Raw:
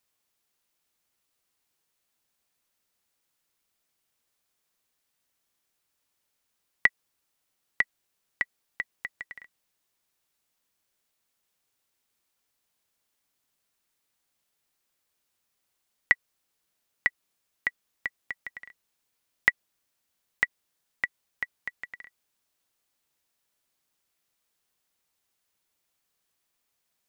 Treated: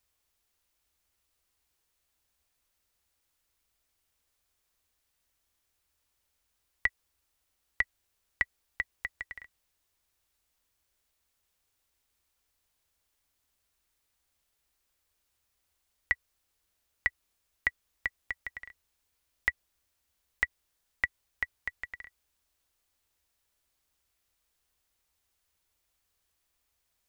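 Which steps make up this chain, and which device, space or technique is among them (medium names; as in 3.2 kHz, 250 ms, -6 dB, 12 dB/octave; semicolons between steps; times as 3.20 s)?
car stereo with a boomy subwoofer (resonant low shelf 100 Hz +11.5 dB, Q 1.5; peak limiter -12 dBFS, peak gain reduction 7.5 dB)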